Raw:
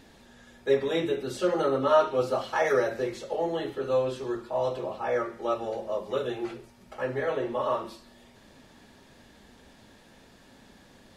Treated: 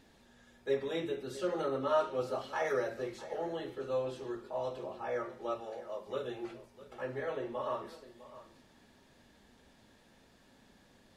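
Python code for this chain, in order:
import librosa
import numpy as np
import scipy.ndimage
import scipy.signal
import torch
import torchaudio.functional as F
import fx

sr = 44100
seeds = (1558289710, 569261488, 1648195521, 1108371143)

y = fx.low_shelf(x, sr, hz=320.0, db=-9.0, at=(5.6, 6.07))
y = y + 10.0 ** (-16.5 / 20.0) * np.pad(y, (int(654 * sr / 1000.0), 0))[:len(y)]
y = y * librosa.db_to_amplitude(-8.5)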